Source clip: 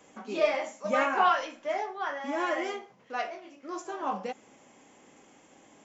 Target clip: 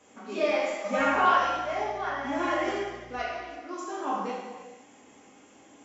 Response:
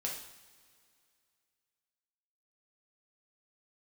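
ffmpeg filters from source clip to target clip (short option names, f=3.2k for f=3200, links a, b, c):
-filter_complex "[0:a]asettb=1/sr,asplit=3[a][b][c];[a]atrim=end=0.994[d];[b]atrim=start=0.99:end=3.18,asetpts=PTS-STARTPTS,afade=t=in:d=0.004:c=qsin,afade=t=out:st=2.186:d=0.004:c=qsin,aeval=exprs='val(0)+0.00501*(sin(2*PI*60*n/s)+sin(2*PI*2*60*n/s)/2+sin(2*PI*3*60*n/s)/3+sin(2*PI*4*60*n/s)/4+sin(2*PI*5*60*n/s)/5)':c=same[e];[c]atrim=start=3.176[f];[d][e]acrossfade=d=0.004:c1=hsin:c2=qsin[g];[g][f]acrossfade=d=0.004:c1=qsin:c2=hsin[h];[1:a]atrim=start_sample=2205,afade=t=out:st=0.33:d=0.01,atrim=end_sample=14994,asetrate=23373,aresample=44100[i];[h][i]afir=irnorm=-1:irlink=0,volume=-4dB"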